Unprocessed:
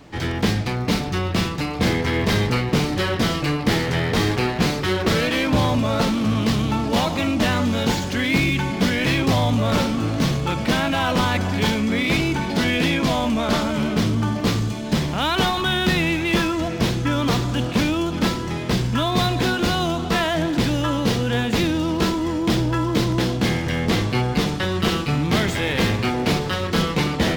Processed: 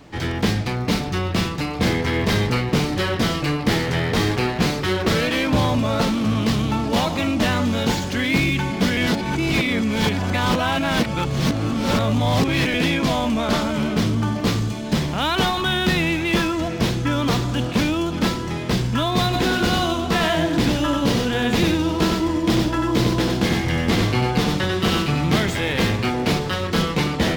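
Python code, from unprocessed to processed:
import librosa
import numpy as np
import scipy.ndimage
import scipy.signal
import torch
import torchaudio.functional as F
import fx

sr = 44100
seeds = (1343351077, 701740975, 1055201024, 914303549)

y = fx.echo_single(x, sr, ms=94, db=-4.0, at=(19.32, 25.36), fade=0.02)
y = fx.edit(y, sr, fx.reverse_span(start_s=8.97, length_s=3.77), tone=tone)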